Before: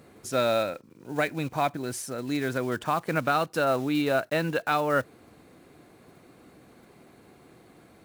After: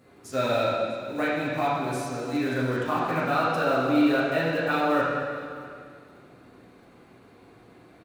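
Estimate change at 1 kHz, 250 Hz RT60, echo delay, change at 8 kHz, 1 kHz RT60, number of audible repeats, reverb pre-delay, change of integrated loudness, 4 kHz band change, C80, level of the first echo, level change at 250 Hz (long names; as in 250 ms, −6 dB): +2.0 dB, 2.1 s, 647 ms, −5.0 dB, 2.1 s, 1, 5 ms, +1.5 dB, +0.5 dB, 0.5 dB, −18.5 dB, +4.5 dB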